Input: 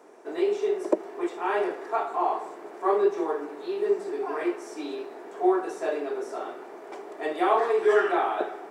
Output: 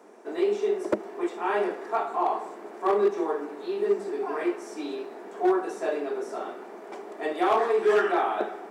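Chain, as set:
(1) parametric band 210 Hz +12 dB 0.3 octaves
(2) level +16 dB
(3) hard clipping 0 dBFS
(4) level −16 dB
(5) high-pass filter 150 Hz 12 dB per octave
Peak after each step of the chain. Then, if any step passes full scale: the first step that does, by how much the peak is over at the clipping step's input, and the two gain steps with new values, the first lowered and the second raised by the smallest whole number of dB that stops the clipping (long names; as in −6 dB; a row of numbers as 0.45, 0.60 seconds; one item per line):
−8.0, +8.0, 0.0, −16.0, −11.5 dBFS
step 2, 8.0 dB
step 2 +8 dB, step 4 −8 dB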